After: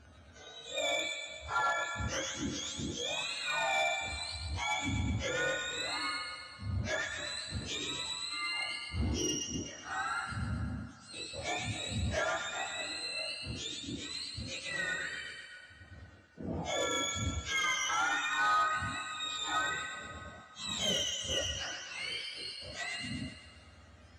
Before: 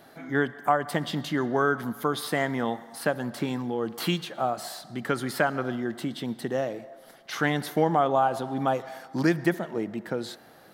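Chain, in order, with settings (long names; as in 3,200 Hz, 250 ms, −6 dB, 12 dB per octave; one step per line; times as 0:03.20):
frequency axis turned over on the octave scale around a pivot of 1,500 Hz
change of speed 0.444×
on a send: delay with a high-pass on its return 124 ms, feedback 58%, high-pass 1,400 Hz, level −4 dB
on the sum: soft clipping −20 dBFS, distortion −17 dB
level −4 dB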